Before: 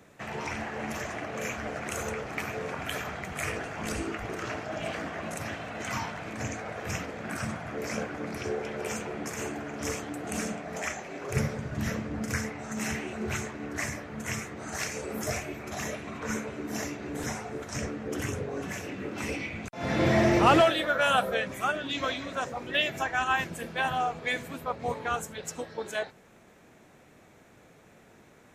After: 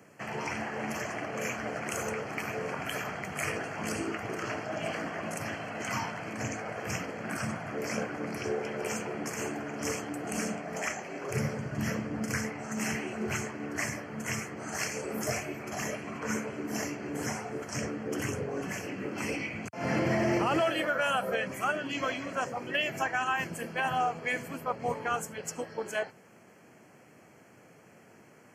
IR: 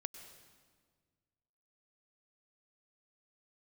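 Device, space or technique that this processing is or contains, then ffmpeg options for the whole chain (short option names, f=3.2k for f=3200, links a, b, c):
PA system with an anti-feedback notch: -af "highpass=f=100:w=0.5412,highpass=f=100:w=1.3066,asuperstop=centerf=3700:order=8:qfactor=4.2,alimiter=limit=-19dB:level=0:latency=1:release=108"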